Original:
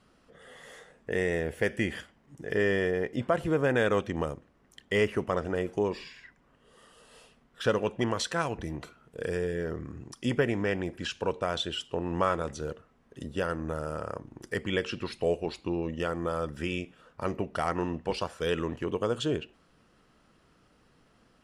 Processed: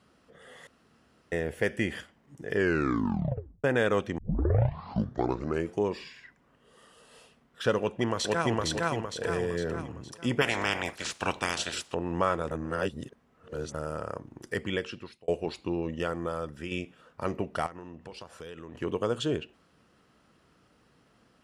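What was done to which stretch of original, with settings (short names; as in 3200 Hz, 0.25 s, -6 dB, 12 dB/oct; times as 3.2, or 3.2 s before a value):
0.67–1.32 room tone
2.55 tape stop 1.09 s
4.18 tape start 1.59 s
7.78–8.59 echo throw 0.46 s, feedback 45%, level 0 dB
9.25–9.82 three-band squash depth 70%
10.4–11.93 spectral limiter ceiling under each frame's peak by 26 dB
12.51–13.74 reverse
14.63–15.28 fade out
16.03–16.71 fade out, to -6 dB
17.66–18.75 compressor 5:1, threshold -41 dBFS
whole clip: HPF 57 Hz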